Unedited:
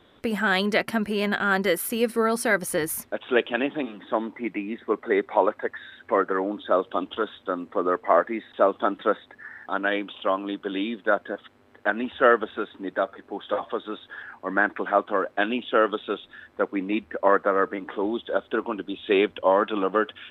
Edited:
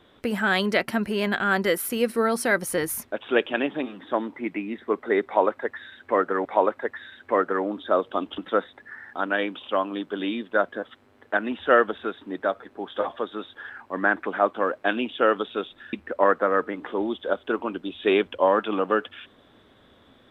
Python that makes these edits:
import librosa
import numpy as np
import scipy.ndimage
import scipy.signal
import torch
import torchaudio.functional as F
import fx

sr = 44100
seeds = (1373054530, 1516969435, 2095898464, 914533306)

y = fx.edit(x, sr, fx.repeat(start_s=5.25, length_s=1.2, count=2),
    fx.cut(start_s=7.18, length_s=1.73),
    fx.cut(start_s=16.46, length_s=0.51), tone=tone)